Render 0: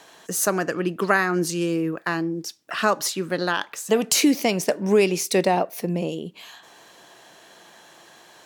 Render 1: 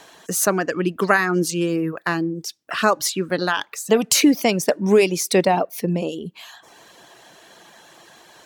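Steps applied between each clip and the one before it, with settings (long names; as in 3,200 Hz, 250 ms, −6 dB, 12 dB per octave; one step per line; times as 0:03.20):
reverb reduction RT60 0.57 s
low-shelf EQ 110 Hz +5.5 dB
level +3 dB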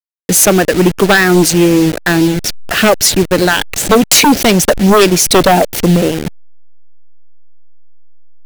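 hold until the input has moved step −26.5 dBFS
parametric band 1,100 Hz −10.5 dB 0.59 octaves
sine wavefolder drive 11 dB, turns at −3 dBFS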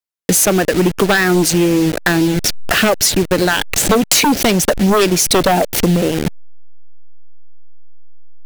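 downward compressor 4 to 1, threshold −16 dBFS, peak gain reduction 9.5 dB
level +4 dB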